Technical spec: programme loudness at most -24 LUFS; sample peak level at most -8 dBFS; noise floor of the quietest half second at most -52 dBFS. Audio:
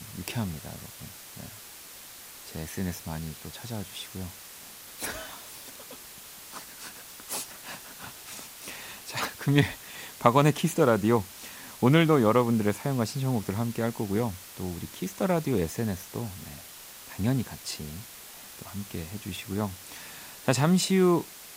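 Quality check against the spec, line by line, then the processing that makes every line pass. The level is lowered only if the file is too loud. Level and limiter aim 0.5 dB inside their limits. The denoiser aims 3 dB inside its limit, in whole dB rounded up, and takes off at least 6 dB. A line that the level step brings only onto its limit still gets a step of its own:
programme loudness -28.0 LUFS: OK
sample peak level -5.0 dBFS: fail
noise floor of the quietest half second -46 dBFS: fail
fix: denoiser 9 dB, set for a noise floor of -46 dBFS; limiter -8.5 dBFS

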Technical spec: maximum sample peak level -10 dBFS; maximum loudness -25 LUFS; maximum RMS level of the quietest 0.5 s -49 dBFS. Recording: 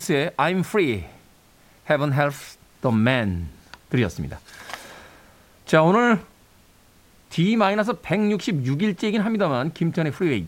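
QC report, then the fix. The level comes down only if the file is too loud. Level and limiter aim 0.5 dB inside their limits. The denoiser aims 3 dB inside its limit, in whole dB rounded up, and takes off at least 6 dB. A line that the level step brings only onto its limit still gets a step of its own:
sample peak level -5.0 dBFS: fail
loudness -22.0 LUFS: fail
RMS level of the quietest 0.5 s -54 dBFS: OK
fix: gain -3.5 dB; limiter -10.5 dBFS

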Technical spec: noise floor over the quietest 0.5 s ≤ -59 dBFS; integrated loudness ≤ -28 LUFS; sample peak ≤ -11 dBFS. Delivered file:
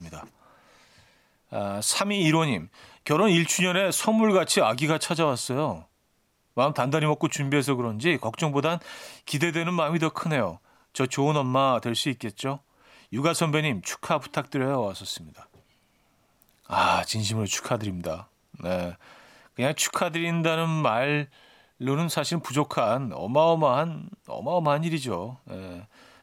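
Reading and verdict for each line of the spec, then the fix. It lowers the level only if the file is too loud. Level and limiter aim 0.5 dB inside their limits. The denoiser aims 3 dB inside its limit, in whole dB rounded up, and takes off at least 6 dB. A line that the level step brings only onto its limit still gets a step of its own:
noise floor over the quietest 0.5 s -69 dBFS: OK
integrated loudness -25.5 LUFS: fail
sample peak -9.5 dBFS: fail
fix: gain -3 dB

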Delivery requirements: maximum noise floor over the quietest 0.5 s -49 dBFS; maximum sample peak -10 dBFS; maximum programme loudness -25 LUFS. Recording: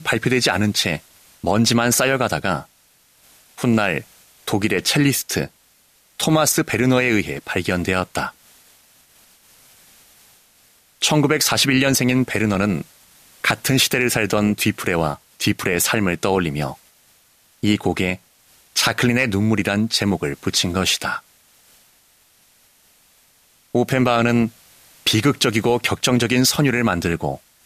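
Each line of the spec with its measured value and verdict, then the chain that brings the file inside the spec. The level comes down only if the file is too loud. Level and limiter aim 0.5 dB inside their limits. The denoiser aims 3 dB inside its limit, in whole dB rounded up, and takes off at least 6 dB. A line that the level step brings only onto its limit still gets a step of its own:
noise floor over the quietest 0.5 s -57 dBFS: OK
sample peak -5.0 dBFS: fail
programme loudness -19.0 LUFS: fail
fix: gain -6.5 dB

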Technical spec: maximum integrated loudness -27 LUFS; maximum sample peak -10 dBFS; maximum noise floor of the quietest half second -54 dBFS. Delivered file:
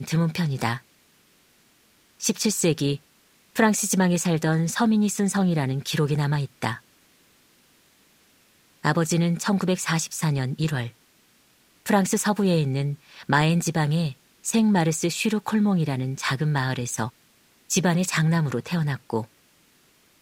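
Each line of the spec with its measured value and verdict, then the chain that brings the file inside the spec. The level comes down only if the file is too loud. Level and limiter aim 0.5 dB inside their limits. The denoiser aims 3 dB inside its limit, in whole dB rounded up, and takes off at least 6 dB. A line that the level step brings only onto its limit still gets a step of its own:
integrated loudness -24.0 LUFS: fail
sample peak -4.5 dBFS: fail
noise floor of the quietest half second -60 dBFS: OK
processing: gain -3.5 dB; limiter -10.5 dBFS

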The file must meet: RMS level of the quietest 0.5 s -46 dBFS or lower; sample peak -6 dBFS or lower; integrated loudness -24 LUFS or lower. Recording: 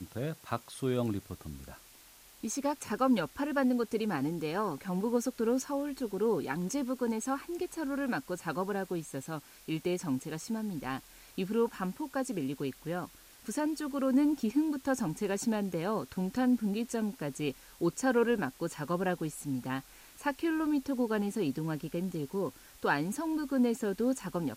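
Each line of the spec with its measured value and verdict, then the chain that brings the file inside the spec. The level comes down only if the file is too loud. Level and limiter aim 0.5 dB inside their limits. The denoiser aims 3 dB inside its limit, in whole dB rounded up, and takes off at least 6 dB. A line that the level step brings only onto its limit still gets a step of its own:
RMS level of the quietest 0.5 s -57 dBFS: OK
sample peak -16.0 dBFS: OK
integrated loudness -33.0 LUFS: OK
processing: none

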